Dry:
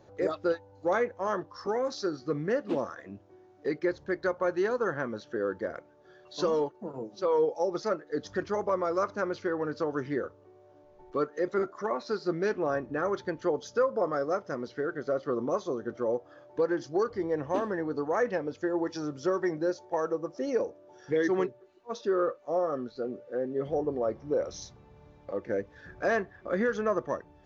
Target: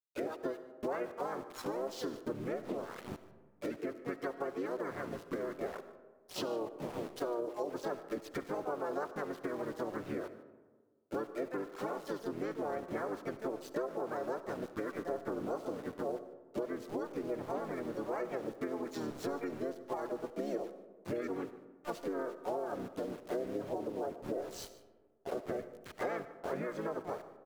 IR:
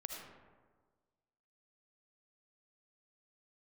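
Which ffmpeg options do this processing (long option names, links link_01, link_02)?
-filter_complex "[0:a]aeval=exprs='val(0)*gte(abs(val(0)),0.00891)':channel_layout=same,acompressor=threshold=-39dB:ratio=16,adynamicequalizer=threshold=0.00126:dfrequency=700:dqfactor=0.72:tfrequency=700:tqfactor=0.72:attack=5:release=100:ratio=0.375:range=2:mode=boostabove:tftype=bell,asplit=3[link_01][link_02][link_03];[link_02]asetrate=33038,aresample=44100,atempo=1.33484,volume=-1dB[link_04];[link_03]asetrate=55563,aresample=44100,atempo=0.793701,volume=-3dB[link_05];[link_01][link_04][link_05]amix=inputs=3:normalize=0,aecho=1:1:149:0.112,asplit=2[link_06][link_07];[1:a]atrim=start_sample=2205[link_08];[link_07][link_08]afir=irnorm=-1:irlink=0,volume=-5.5dB[link_09];[link_06][link_09]amix=inputs=2:normalize=0,volume=-4dB"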